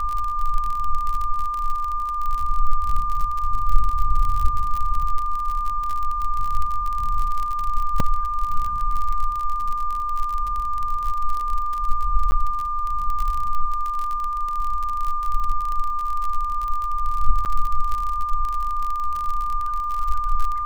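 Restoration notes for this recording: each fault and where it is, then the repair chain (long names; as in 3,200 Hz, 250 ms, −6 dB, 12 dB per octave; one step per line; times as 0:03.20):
surface crackle 43 per second −24 dBFS
whistle 1,200 Hz −23 dBFS
0:08.00: drop-out 2.8 ms
0:12.31–0:12.32: drop-out 10 ms
0:17.45–0:17.46: drop-out 8.5 ms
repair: click removal
notch filter 1,200 Hz, Q 30
repair the gap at 0:08.00, 2.8 ms
repair the gap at 0:12.31, 10 ms
repair the gap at 0:17.45, 8.5 ms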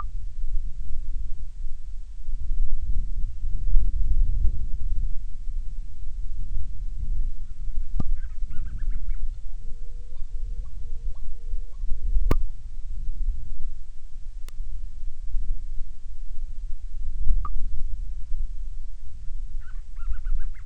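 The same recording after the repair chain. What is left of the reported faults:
none of them is left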